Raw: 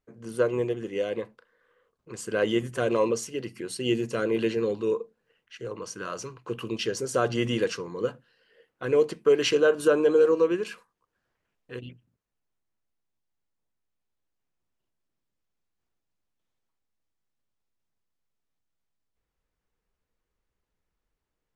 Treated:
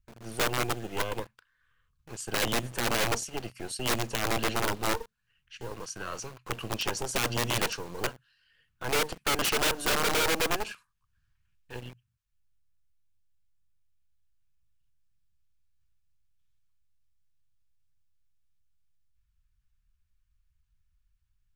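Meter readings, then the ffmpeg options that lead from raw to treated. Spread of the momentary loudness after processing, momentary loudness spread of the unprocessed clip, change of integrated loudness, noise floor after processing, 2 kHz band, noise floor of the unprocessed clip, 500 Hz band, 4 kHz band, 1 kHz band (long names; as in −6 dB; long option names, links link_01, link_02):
17 LU, 16 LU, −3.5 dB, −75 dBFS, +3.0 dB, −83 dBFS, −10.5 dB, +4.5 dB, +4.5 dB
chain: -filter_complex "[0:a]bandreject=frequency=2000:width=11,acrossover=split=120|1200[link_01][link_02][link_03];[link_01]acompressor=mode=upward:threshold=-57dB:ratio=2.5[link_04];[link_02]acrusher=bits=5:dc=4:mix=0:aa=0.000001[link_05];[link_04][link_05][link_03]amix=inputs=3:normalize=0,aeval=exprs='(mod(10*val(0)+1,2)-1)/10':channel_layout=same"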